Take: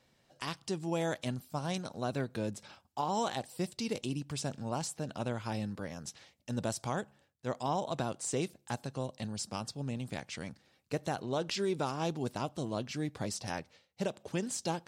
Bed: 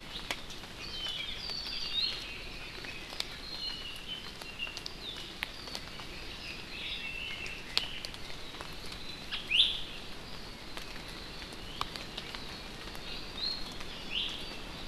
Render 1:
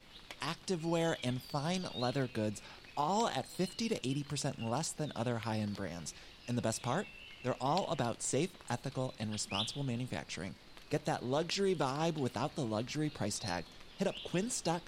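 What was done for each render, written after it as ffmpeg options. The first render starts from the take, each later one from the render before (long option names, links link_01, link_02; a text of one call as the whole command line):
ffmpeg -i in.wav -i bed.wav -filter_complex "[1:a]volume=-13dB[link_01];[0:a][link_01]amix=inputs=2:normalize=0" out.wav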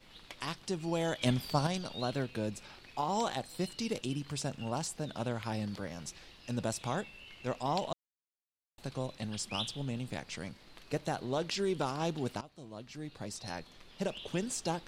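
ffmpeg -i in.wav -filter_complex "[0:a]asettb=1/sr,asplit=3[link_01][link_02][link_03];[link_01]atrim=end=1.214[link_04];[link_02]atrim=start=1.21:end=1.67,asetpts=PTS-STARTPTS,afade=type=in:duration=0.004:curve=qsin,afade=type=out:start_time=0.456:duration=0.004:curve=qsin,acontrast=75[link_05];[link_03]atrim=start=1.666[link_06];[link_04][link_05]acrossfade=duration=0.004:curve1=hsin:curve2=qsin[link_07];[link_07][link_06]acrossfade=duration=0.004:curve1=qsin:curve2=hsin,asplit=4[link_08][link_09][link_10][link_11];[link_08]atrim=end=7.93,asetpts=PTS-STARTPTS,afade=type=out:start_time=7.926:duration=0.004:curve=hsin[link_12];[link_09]atrim=start=7.93:end=8.78,asetpts=PTS-STARTPTS,volume=0[link_13];[link_10]atrim=start=8.78:end=12.41,asetpts=PTS-STARTPTS,afade=type=in:duration=0.004:curve=hsin,afade=type=out:start_time=3.626:duration=0.004:curve=hsin:silence=0.125893[link_14];[link_11]atrim=start=12.41,asetpts=PTS-STARTPTS,afade=type=in:duration=1.78:silence=0.125893[link_15];[link_12][link_13][link_14][link_15]concat=n=4:v=0:a=1" out.wav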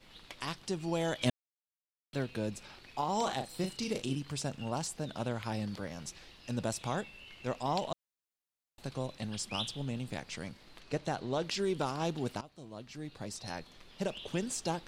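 ffmpeg -i in.wav -filter_complex "[0:a]asettb=1/sr,asplit=3[link_01][link_02][link_03];[link_01]atrim=end=3.174[link_04];[link_02]atrim=start=3.17:end=4.15,asetpts=PTS-STARTPTS,afade=type=in:duration=0.004:curve=qsin,afade=type=out:start_time=0.976:duration=0.004:curve=qsin,asplit=2[link_05][link_06];[link_06]adelay=37,volume=-7dB[link_07];[link_05][link_07]amix=inputs=2:normalize=0,atrim=end_sample=43218[link_08];[link_03]atrim=start=4.146[link_09];[link_04][link_08]acrossfade=duration=0.004:curve1=hsin:curve2=qsin[link_10];[link_10][link_09]acrossfade=duration=0.004:curve1=qsin:curve2=hsin,asettb=1/sr,asplit=3[link_11][link_12][link_13];[link_11]atrim=end=10.804[link_14];[link_12]atrim=start=10.8:end=11.43,asetpts=PTS-STARTPTS,afade=type=in:duration=0.004:curve=qsin,afade=type=out:start_time=0.626:duration=0.004:curve=qsin,lowpass=8300[link_15];[link_13]atrim=start=11.426[link_16];[link_14][link_15]acrossfade=duration=0.004:curve1=hsin:curve2=qsin[link_17];[link_17][link_16]acrossfade=duration=0.004:curve1=qsin:curve2=hsin,asplit=3[link_18][link_19][link_20];[link_18]atrim=end=1.3,asetpts=PTS-STARTPTS,afade=type=out:start_time=1.296:duration=0.004:curve=hsin[link_21];[link_19]atrim=start=1.3:end=2.13,asetpts=PTS-STARTPTS,volume=0[link_22];[link_20]atrim=start=2.13,asetpts=PTS-STARTPTS,afade=type=in:duration=0.004:curve=hsin[link_23];[link_21][link_22][link_23]concat=n=3:v=0:a=1" out.wav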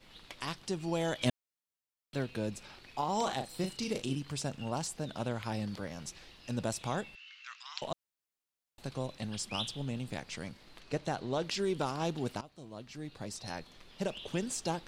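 ffmpeg -i in.wav -filter_complex "[0:a]asettb=1/sr,asplit=3[link_01][link_02][link_03];[link_01]atrim=end=7.154[link_04];[link_02]atrim=start=7.15:end=7.82,asetpts=PTS-STARTPTS,afade=type=in:duration=0.004:curve=qsin,afade=type=out:start_time=0.666:duration=0.004:curve=qsin,asuperpass=centerf=3000:order=12:qfactor=0.54[link_05];[link_03]atrim=start=7.816[link_06];[link_04][link_05]acrossfade=duration=0.004:curve1=hsin:curve2=qsin[link_07];[link_07][link_06]acrossfade=duration=0.004:curve1=qsin:curve2=hsin" out.wav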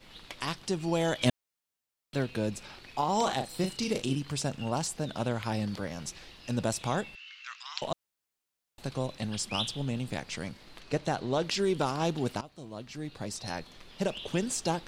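ffmpeg -i in.wav -af "volume=4.5dB" out.wav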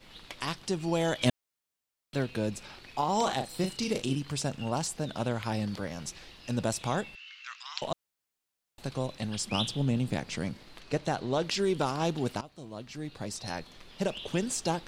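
ffmpeg -i in.wav -filter_complex "[0:a]asettb=1/sr,asplit=3[link_01][link_02][link_03];[link_01]atrim=end=9.474[link_04];[link_02]atrim=start=9.47:end=10.63,asetpts=PTS-STARTPTS,afade=type=in:duration=0.004:curve=qsin,afade=type=out:start_time=1.156:duration=0.004:curve=qsin,equalizer=frequency=190:width_type=o:width=3:gain=5.5[link_05];[link_03]atrim=start=10.626[link_06];[link_04][link_05]acrossfade=duration=0.004:curve1=hsin:curve2=qsin[link_07];[link_07][link_06]acrossfade=duration=0.004:curve1=qsin:curve2=hsin" out.wav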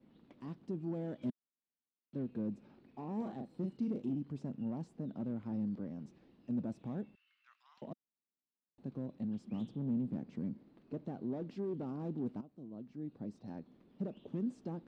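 ffmpeg -i in.wav -af "volume=28dB,asoftclip=hard,volume=-28dB,bandpass=frequency=240:width_type=q:width=2.2:csg=0" out.wav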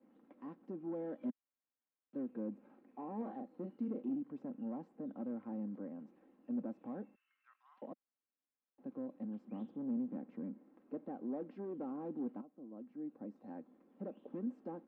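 ffmpeg -i in.wav -filter_complex "[0:a]acrossover=split=230 2100:gain=0.0708 1 0.0631[link_01][link_02][link_03];[link_01][link_02][link_03]amix=inputs=3:normalize=0,aecho=1:1:3.8:0.42" out.wav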